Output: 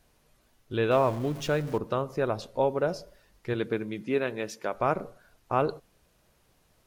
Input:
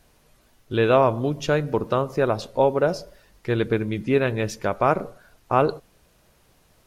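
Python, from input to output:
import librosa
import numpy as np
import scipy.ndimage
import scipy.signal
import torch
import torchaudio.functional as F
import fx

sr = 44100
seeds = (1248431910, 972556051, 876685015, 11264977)

y = fx.zero_step(x, sr, step_db=-32.0, at=(0.91, 1.78))
y = fx.highpass(y, sr, hz=fx.line((3.53, 130.0), (4.73, 280.0)), slope=12, at=(3.53, 4.73), fade=0.02)
y = y * 10.0 ** (-6.5 / 20.0)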